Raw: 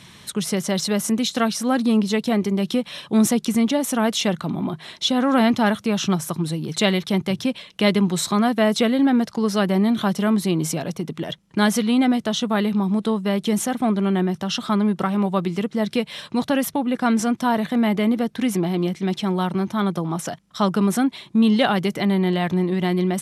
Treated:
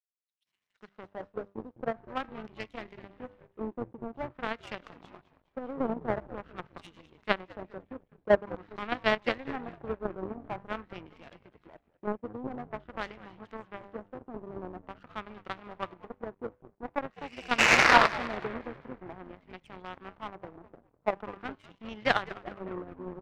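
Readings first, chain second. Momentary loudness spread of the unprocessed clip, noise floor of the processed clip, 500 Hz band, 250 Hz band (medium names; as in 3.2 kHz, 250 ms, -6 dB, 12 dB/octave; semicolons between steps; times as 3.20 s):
7 LU, -75 dBFS, -10.5 dB, -22.0 dB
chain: tone controls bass -13 dB, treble -14 dB; de-hum 99.43 Hz, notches 24; in parallel at -2.5 dB: level held to a coarse grid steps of 20 dB; on the sum: painted sound noise, 17.12–17.62 s, 310–3000 Hz -15 dBFS; bands offset in time highs, lows 460 ms, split 3.6 kHz; LFO low-pass sine 0.47 Hz 410–2700 Hz; on a send: frequency-shifting echo 204 ms, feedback 64%, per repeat -100 Hz, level -10 dB; on the sum: power-law waveshaper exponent 2; trim -2.5 dB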